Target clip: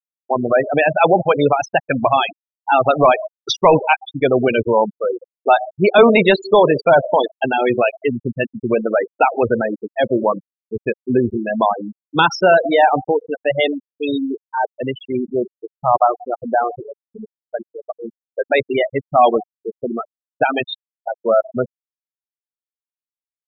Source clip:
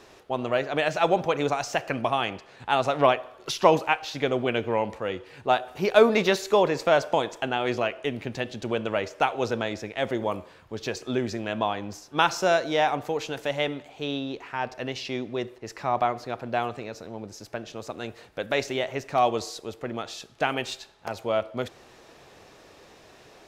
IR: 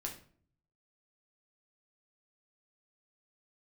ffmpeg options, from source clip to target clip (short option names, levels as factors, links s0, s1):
-filter_complex "[0:a]highshelf=f=2300:g=4,asplit=2[s0][s1];[s1]adelay=170,highpass=300,lowpass=3400,asoftclip=type=hard:threshold=0.224,volume=0.1[s2];[s0][s2]amix=inputs=2:normalize=0,apsyclip=5.62,asplit=2[s3][s4];[s4]adelay=127,lowpass=f=1800:p=1,volume=0.075,asplit=2[s5][s6];[s6]adelay=127,lowpass=f=1800:p=1,volume=0.37,asplit=2[s7][s8];[s8]adelay=127,lowpass=f=1800:p=1,volume=0.37[s9];[s5][s7][s9]amix=inputs=3:normalize=0[s10];[s3][s10]amix=inputs=2:normalize=0,afftfilt=real='re*gte(hypot(re,im),0.631)':imag='im*gte(hypot(re,im),0.631)':win_size=1024:overlap=0.75,volume=0.668"